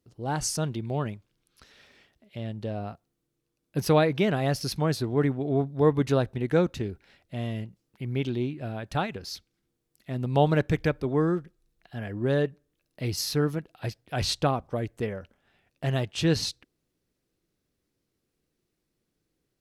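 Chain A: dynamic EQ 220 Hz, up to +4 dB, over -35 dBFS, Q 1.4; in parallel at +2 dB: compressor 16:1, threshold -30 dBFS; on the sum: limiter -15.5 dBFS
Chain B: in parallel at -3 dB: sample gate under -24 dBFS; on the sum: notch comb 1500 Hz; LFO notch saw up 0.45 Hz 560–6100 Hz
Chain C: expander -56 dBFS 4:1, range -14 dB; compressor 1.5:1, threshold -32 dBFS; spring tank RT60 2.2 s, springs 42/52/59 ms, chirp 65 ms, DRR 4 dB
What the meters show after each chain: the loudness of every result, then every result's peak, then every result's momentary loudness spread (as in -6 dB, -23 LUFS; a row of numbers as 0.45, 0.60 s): -26.5, -25.0, -31.0 LUFS; -15.5, -4.5, -14.0 dBFS; 8, 18, 15 LU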